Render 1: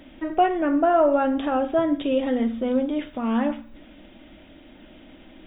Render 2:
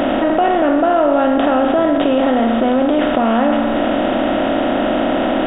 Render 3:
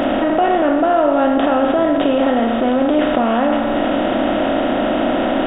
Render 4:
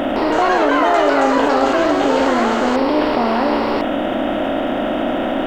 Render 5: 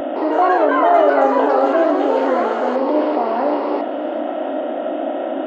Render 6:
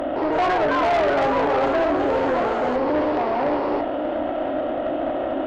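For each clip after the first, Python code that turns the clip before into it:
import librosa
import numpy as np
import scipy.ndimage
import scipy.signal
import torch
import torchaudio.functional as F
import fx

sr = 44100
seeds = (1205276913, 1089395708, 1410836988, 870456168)

y1 = fx.bin_compress(x, sr, power=0.4)
y1 = fx.env_flatten(y1, sr, amount_pct=70)
y2 = fx.doubler(y1, sr, ms=33.0, db=-12)
y2 = y2 * librosa.db_to_amplitude(-1.0)
y3 = np.sign(y2) * np.maximum(np.abs(y2) - 10.0 ** (-44.0 / 20.0), 0.0)
y3 = fx.echo_pitch(y3, sr, ms=161, semitones=7, count=2, db_per_echo=-3.0)
y3 = y3 * librosa.db_to_amplitude(-2.0)
y4 = scipy.signal.sosfilt(scipy.signal.butter(4, 290.0, 'highpass', fs=sr, output='sos'), y3)
y4 = fx.echo_alternate(y4, sr, ms=191, hz=880.0, feedback_pct=78, wet_db=-10.5)
y4 = fx.spectral_expand(y4, sr, expansion=1.5)
y5 = fx.tube_stage(y4, sr, drive_db=16.0, bias=0.35)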